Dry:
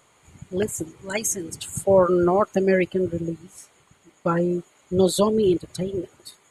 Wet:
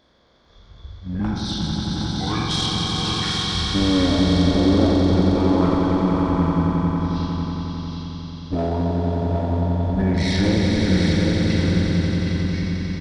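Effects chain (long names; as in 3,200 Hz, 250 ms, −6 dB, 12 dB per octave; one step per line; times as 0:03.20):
peak hold with a decay on every bin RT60 0.73 s
asymmetric clip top −21 dBFS
low-shelf EQ 280 Hz +4 dB
single-tap delay 383 ms −5.5 dB
wrong playback speed 15 ips tape played at 7.5 ips
echo that builds up and dies away 90 ms, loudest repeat 5, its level −7.5 dB
level −2.5 dB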